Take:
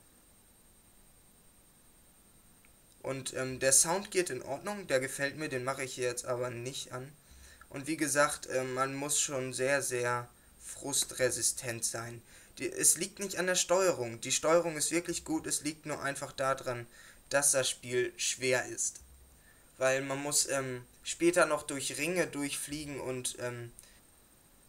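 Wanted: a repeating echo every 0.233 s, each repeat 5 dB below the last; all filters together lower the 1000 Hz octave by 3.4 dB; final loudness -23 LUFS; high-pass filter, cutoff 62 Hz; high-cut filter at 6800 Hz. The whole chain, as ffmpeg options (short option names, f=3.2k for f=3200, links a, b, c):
-af "highpass=62,lowpass=6.8k,equalizer=f=1k:t=o:g=-5,aecho=1:1:233|466|699|932|1165|1398|1631:0.562|0.315|0.176|0.0988|0.0553|0.031|0.0173,volume=10dB"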